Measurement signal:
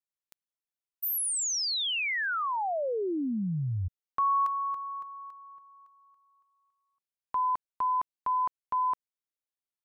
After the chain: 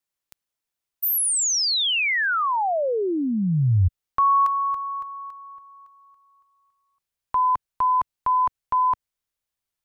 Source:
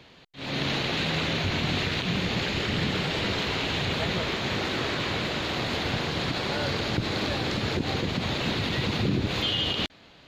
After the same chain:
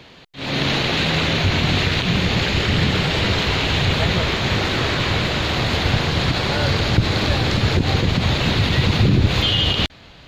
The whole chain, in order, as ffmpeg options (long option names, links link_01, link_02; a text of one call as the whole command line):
ffmpeg -i in.wav -af "asubboost=boost=2.5:cutoff=140,volume=8dB" out.wav